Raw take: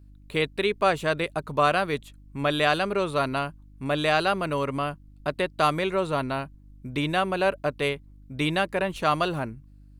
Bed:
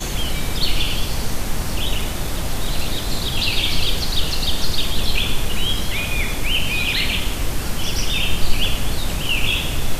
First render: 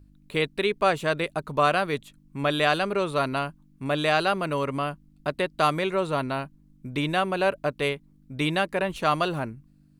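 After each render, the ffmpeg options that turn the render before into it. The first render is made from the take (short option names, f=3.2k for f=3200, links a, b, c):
-af "bandreject=f=50:t=h:w=4,bandreject=f=100:t=h:w=4"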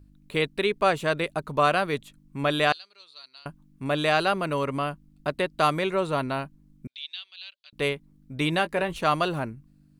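-filter_complex "[0:a]asettb=1/sr,asplit=3[a][b][c];[a]atrim=end=2.724[d];[b]atrim=start=2.72:end=3.46,asetpts=PTS-STARTPTS,afade=t=in:d=0.004:c=qsin,afade=t=out:st=0.736:d=0.004:c=qsin,bandpass=f=4.4k:t=q:w=8.4[e];[c]atrim=start=3.456[f];[d][e]acrossfade=d=0.004:c1=hsin:c2=qsin[g];[g][f]acrossfade=d=0.004:c1=qsin:c2=hsin,asettb=1/sr,asplit=3[h][i][j];[h]atrim=end=6.874[k];[i]atrim=start=6.87:end=7.73,asetpts=PTS-STARTPTS,afade=t=in:d=0.004:c=qsin,afade=t=out:st=0.856:d=0.004:c=qsin,asuperpass=centerf=3800:order=4:qfactor=2.4[l];[j]atrim=start=7.726[m];[k][l]acrossfade=d=0.004:c1=hsin:c2=qsin[n];[n][m]acrossfade=d=0.004:c1=qsin:c2=hsin,asettb=1/sr,asplit=3[o][p][q];[o]atrim=end=8.504[r];[p]atrim=start=8.5:end=9.01,asetpts=PTS-STARTPTS,afade=t=in:d=0.004:c=qsin,afade=t=out:st=0.506:d=0.004:c=qsin,asplit=2[s][t];[t]adelay=18,volume=-11dB[u];[s][u]amix=inputs=2:normalize=0,atrim=end_sample=22491[v];[q]atrim=start=9.006[w];[r][v]acrossfade=d=0.004:c1=hsin:c2=qsin[x];[x][w]acrossfade=d=0.004:c1=qsin:c2=hsin"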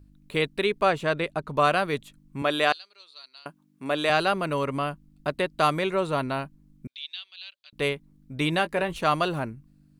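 -filter_complex "[0:a]asettb=1/sr,asplit=3[a][b][c];[a]atrim=end=0.854[d];[b]atrim=start=0.85:end=1.57,asetpts=PTS-STARTPTS,afade=t=in:d=0.004:c=qsin,afade=t=out:st=0.716:d=0.004:c=qsin,highshelf=f=7.7k:g=-10.5[e];[c]atrim=start=1.566[f];[d][e]acrossfade=d=0.004:c1=hsin:c2=qsin[g];[g][f]acrossfade=d=0.004:c1=qsin:c2=hsin,asettb=1/sr,asplit=3[h][i][j];[h]atrim=end=2.424[k];[i]atrim=start=2.42:end=4.1,asetpts=PTS-STARTPTS,afade=t=in:d=0.004:c=qsin,afade=t=out:st=1.676:d=0.004:c=qsin,highpass=240[l];[j]atrim=start=4.096[m];[k][l]acrossfade=d=0.004:c1=hsin:c2=qsin[n];[n][m]acrossfade=d=0.004:c1=qsin:c2=hsin"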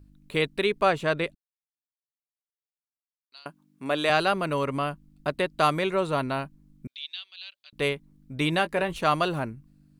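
-filter_complex "[0:a]asplit=3[a][b][c];[a]atrim=end=1.35,asetpts=PTS-STARTPTS,afade=t=out:st=1.346:d=0.004:c=hsin[d];[b]atrim=start=1.35:end=3.32,asetpts=PTS-STARTPTS,volume=0[e];[c]atrim=start=3.32,asetpts=PTS-STARTPTS,afade=t=in:d=0.004:c=hsin[f];[d][e][f]concat=n=3:v=0:a=1"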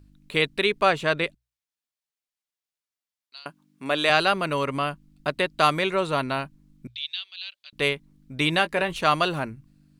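-af "equalizer=f=3.5k:w=0.38:g=5.5,bandreject=f=60:t=h:w=6,bandreject=f=120:t=h:w=6"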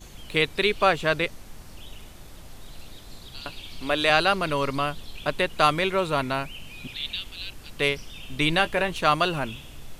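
-filter_complex "[1:a]volume=-21dB[a];[0:a][a]amix=inputs=2:normalize=0"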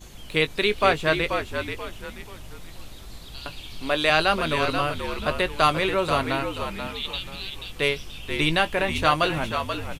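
-filter_complex "[0:a]asplit=2[a][b];[b]adelay=19,volume=-13dB[c];[a][c]amix=inputs=2:normalize=0,asplit=2[d][e];[e]asplit=4[f][g][h][i];[f]adelay=483,afreqshift=-61,volume=-7dB[j];[g]adelay=966,afreqshift=-122,volume=-16.4dB[k];[h]adelay=1449,afreqshift=-183,volume=-25.7dB[l];[i]adelay=1932,afreqshift=-244,volume=-35.1dB[m];[j][k][l][m]amix=inputs=4:normalize=0[n];[d][n]amix=inputs=2:normalize=0"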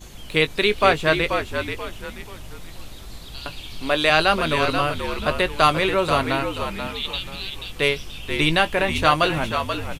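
-af "volume=3dB,alimiter=limit=-2dB:level=0:latency=1"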